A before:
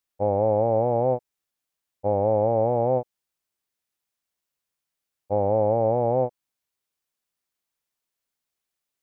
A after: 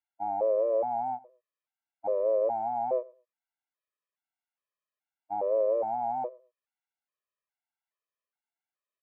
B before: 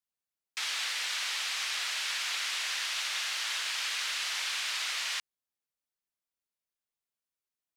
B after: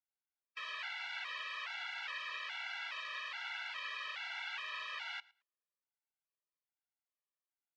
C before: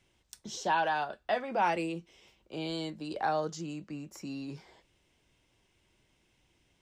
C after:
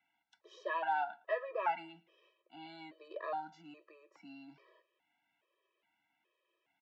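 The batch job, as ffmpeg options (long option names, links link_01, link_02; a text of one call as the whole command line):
ffmpeg -i in.wav -af "highpass=600,lowpass=2900,aemphasis=mode=reproduction:type=75fm,aecho=1:1:111|222:0.0708|0.012,afftfilt=real='re*gt(sin(2*PI*1.2*pts/sr)*(1-2*mod(floor(b*sr/1024/330),2)),0)':imag='im*gt(sin(2*PI*1.2*pts/sr)*(1-2*mod(floor(b*sr/1024/330),2)),0)':win_size=1024:overlap=0.75" out.wav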